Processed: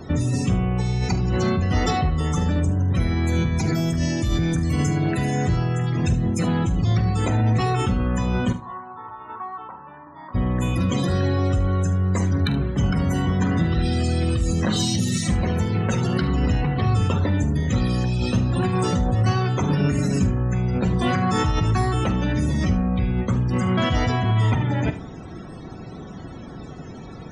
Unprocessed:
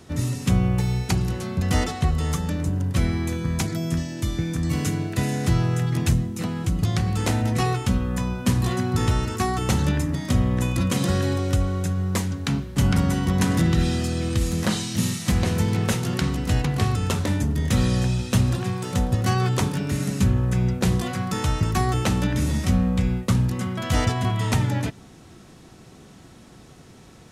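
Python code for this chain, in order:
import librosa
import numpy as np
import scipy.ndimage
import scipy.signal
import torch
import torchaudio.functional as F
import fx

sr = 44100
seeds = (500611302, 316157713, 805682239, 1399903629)

p1 = fx.over_compress(x, sr, threshold_db=-28.0, ratio=-0.5)
p2 = x + (p1 * 10.0 ** (1.0 / 20.0))
p3 = fx.bandpass_q(p2, sr, hz=1000.0, q=5.8, at=(8.52, 10.34), fade=0.02)
p4 = fx.spec_topn(p3, sr, count=64)
p5 = 10.0 ** (-12.0 / 20.0) * np.tanh(p4 / 10.0 ** (-12.0 / 20.0))
p6 = p5 + fx.room_early_taps(p5, sr, ms=(46, 74), db=(-14.5, -15.5), dry=0)
y = fx.rev_plate(p6, sr, seeds[0], rt60_s=0.8, hf_ratio=0.5, predelay_ms=0, drr_db=15.5)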